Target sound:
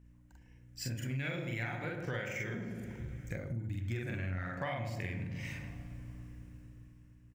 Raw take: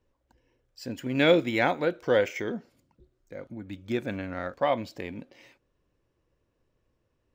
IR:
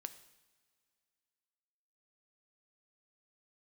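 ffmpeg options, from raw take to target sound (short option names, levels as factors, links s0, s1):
-filter_complex "[0:a]equalizer=f=125:t=o:w=1:g=11,equalizer=f=250:t=o:w=1:g=-9,equalizer=f=500:t=o:w=1:g=-9,equalizer=f=1000:t=o:w=1:g=-6,equalizer=f=2000:t=o:w=1:g=5,equalizer=f=4000:t=o:w=1:g=-8,equalizer=f=8000:t=o:w=1:g=4,asplit=2[s0][s1];[1:a]atrim=start_sample=2205,adelay=44[s2];[s1][s2]afir=irnorm=-1:irlink=0,volume=1.58[s3];[s0][s3]amix=inputs=2:normalize=0,aeval=exprs='val(0)+0.00112*(sin(2*PI*60*n/s)+sin(2*PI*2*60*n/s)/2+sin(2*PI*3*60*n/s)/3+sin(2*PI*4*60*n/s)/4+sin(2*PI*5*60*n/s)/5)':c=same,dynaudnorm=f=240:g=9:m=5.01,asplit=2[s4][s5];[s5]adelay=107,lowpass=f=810:p=1,volume=0.531,asplit=2[s6][s7];[s7]adelay=107,lowpass=f=810:p=1,volume=0.5,asplit=2[s8][s9];[s9]adelay=107,lowpass=f=810:p=1,volume=0.5,asplit=2[s10][s11];[s11]adelay=107,lowpass=f=810:p=1,volume=0.5,asplit=2[s12][s13];[s13]adelay=107,lowpass=f=810:p=1,volume=0.5,asplit=2[s14][s15];[s15]adelay=107,lowpass=f=810:p=1,volume=0.5[s16];[s4][s6][s8][s10][s12][s14][s16]amix=inputs=7:normalize=0,acompressor=threshold=0.0141:ratio=8,asettb=1/sr,asplit=3[s17][s18][s19];[s17]atrim=end=3.364[s20];[s18]atrim=start=3.36:end=3.78,asetpts=PTS-STARTPTS,afade=t=in:d=0.004:c=qsin,afade=t=out:st=0.416:d=0.004:c=qsin,equalizer=f=1800:t=o:w=2.3:g=-9.5[s21];[s19]atrim=start=3.776[s22];[s20][s21]acrossfade=d=0.004:c1=hsin:c2=qsin[s23];[s23][s22]acrossfade=d=0.004:c1=qsin:c2=hsin,volume=1.12"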